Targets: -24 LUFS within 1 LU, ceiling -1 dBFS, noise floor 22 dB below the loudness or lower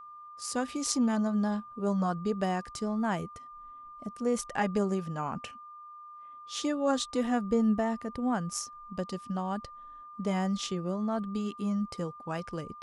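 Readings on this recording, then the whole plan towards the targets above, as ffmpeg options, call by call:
steady tone 1200 Hz; tone level -45 dBFS; loudness -31.5 LUFS; peak -13.0 dBFS; loudness target -24.0 LUFS
-> -af "bandreject=f=1.2k:w=30"
-af "volume=7.5dB"

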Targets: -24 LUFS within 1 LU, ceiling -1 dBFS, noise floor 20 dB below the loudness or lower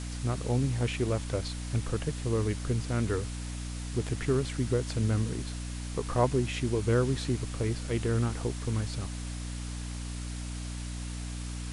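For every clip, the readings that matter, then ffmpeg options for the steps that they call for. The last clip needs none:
hum 60 Hz; harmonics up to 300 Hz; hum level -35 dBFS; noise floor -37 dBFS; noise floor target -52 dBFS; loudness -32.0 LUFS; peak -11.5 dBFS; loudness target -24.0 LUFS
-> -af "bandreject=f=60:t=h:w=4,bandreject=f=120:t=h:w=4,bandreject=f=180:t=h:w=4,bandreject=f=240:t=h:w=4,bandreject=f=300:t=h:w=4"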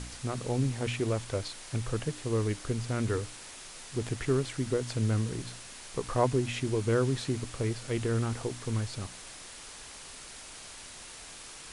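hum none; noise floor -47 dBFS; noise floor target -52 dBFS
-> -af "afftdn=nr=6:nf=-47"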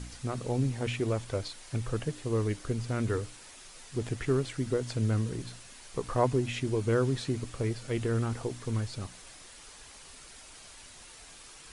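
noise floor -51 dBFS; noise floor target -52 dBFS
-> -af "afftdn=nr=6:nf=-51"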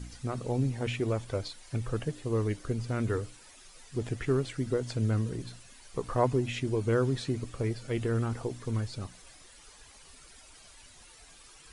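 noise floor -54 dBFS; loudness -32.0 LUFS; peak -12.0 dBFS; loudness target -24.0 LUFS
-> -af "volume=8dB"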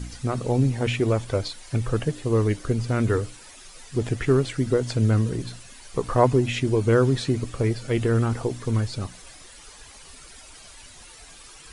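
loudness -24.0 LUFS; peak -4.0 dBFS; noise floor -46 dBFS

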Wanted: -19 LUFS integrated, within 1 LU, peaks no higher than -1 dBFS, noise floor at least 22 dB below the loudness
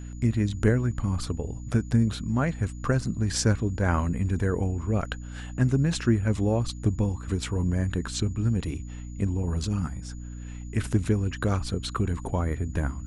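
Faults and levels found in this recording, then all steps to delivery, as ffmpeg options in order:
hum 60 Hz; harmonics up to 300 Hz; hum level -35 dBFS; steady tone 6900 Hz; tone level -54 dBFS; loudness -27.5 LUFS; peak -10.0 dBFS; loudness target -19.0 LUFS
-> -af "bandreject=f=60:t=h:w=6,bandreject=f=120:t=h:w=6,bandreject=f=180:t=h:w=6,bandreject=f=240:t=h:w=6,bandreject=f=300:t=h:w=6"
-af "bandreject=f=6.9k:w=30"
-af "volume=8.5dB"

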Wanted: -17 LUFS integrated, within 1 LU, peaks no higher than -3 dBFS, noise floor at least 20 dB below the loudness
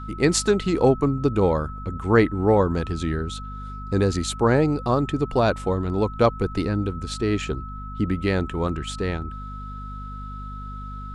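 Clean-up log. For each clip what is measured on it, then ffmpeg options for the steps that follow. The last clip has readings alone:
hum 50 Hz; harmonics up to 250 Hz; hum level -32 dBFS; steady tone 1300 Hz; tone level -37 dBFS; loudness -23.0 LUFS; peak -4.5 dBFS; loudness target -17.0 LUFS
-> -af "bandreject=f=50:t=h:w=4,bandreject=f=100:t=h:w=4,bandreject=f=150:t=h:w=4,bandreject=f=200:t=h:w=4,bandreject=f=250:t=h:w=4"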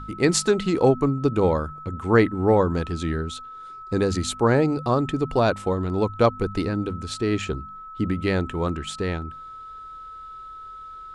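hum none; steady tone 1300 Hz; tone level -37 dBFS
-> -af "bandreject=f=1.3k:w=30"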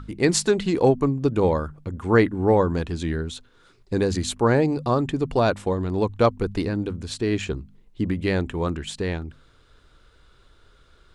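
steady tone none; loudness -23.5 LUFS; peak -5.0 dBFS; loudness target -17.0 LUFS
-> -af "volume=6.5dB,alimiter=limit=-3dB:level=0:latency=1"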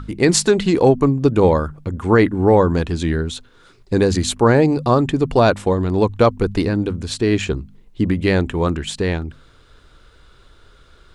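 loudness -17.5 LUFS; peak -3.0 dBFS; noise floor -50 dBFS

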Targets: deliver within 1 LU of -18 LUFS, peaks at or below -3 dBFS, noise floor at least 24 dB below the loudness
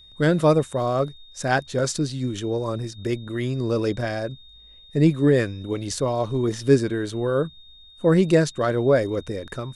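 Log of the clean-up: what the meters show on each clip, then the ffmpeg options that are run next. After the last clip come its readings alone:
steady tone 3700 Hz; tone level -47 dBFS; loudness -23.0 LUFS; peak -5.5 dBFS; loudness target -18.0 LUFS
-> -af "bandreject=f=3.7k:w=30"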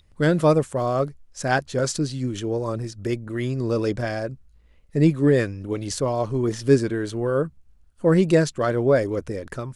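steady tone none; loudness -23.0 LUFS; peak -5.5 dBFS; loudness target -18.0 LUFS
-> -af "volume=5dB,alimiter=limit=-3dB:level=0:latency=1"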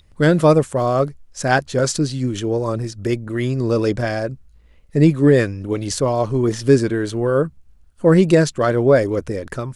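loudness -18.5 LUFS; peak -3.0 dBFS; noise floor -51 dBFS

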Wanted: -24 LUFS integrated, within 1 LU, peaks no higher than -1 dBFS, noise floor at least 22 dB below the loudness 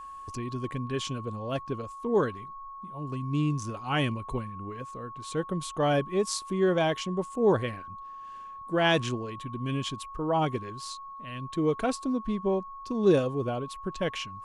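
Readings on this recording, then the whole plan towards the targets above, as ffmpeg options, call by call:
steady tone 1100 Hz; tone level -40 dBFS; loudness -30.0 LUFS; peak -10.5 dBFS; loudness target -24.0 LUFS
-> -af "bandreject=f=1.1k:w=30"
-af "volume=6dB"

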